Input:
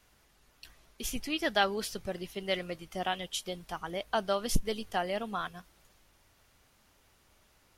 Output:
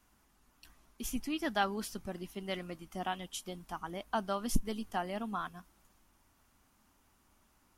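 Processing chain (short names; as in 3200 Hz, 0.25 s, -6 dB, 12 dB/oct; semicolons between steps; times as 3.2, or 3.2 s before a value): graphic EQ 125/250/500/1000/2000/4000 Hz -4/+7/-8/+4/-4/-6 dB; gain -2.5 dB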